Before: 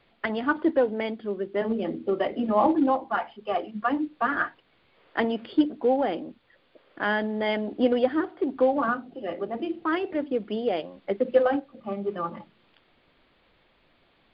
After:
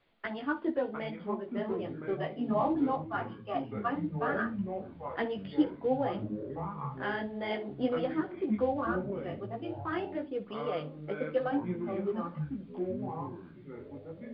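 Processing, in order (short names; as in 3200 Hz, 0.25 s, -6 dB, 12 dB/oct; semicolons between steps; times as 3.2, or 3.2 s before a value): flutter echo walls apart 10.1 m, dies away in 0.21 s; chorus voices 4, 0.94 Hz, delay 15 ms, depth 4.8 ms; echoes that change speed 0.604 s, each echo -6 st, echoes 3, each echo -6 dB; gain -5.5 dB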